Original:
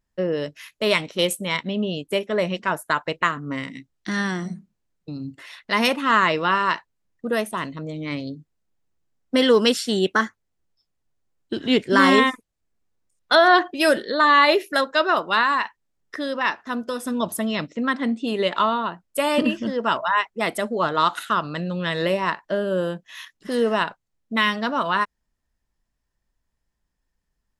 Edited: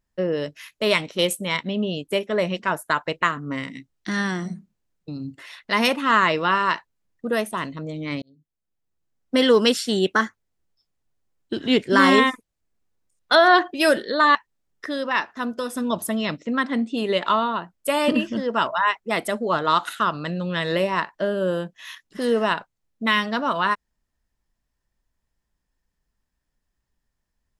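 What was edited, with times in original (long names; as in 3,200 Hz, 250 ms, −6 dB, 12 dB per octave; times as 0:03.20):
0:08.22–0:09.41: fade in
0:14.35–0:15.65: remove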